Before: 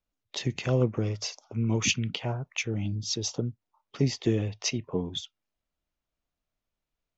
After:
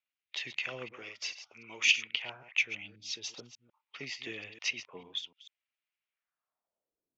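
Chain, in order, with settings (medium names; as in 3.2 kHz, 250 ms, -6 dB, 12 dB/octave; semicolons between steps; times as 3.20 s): chunks repeated in reverse 148 ms, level -12 dB; 0.93–2.14 s: tone controls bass -9 dB, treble +4 dB; band-pass sweep 2.4 kHz -> 280 Hz, 6.09–7.16 s; trim +5 dB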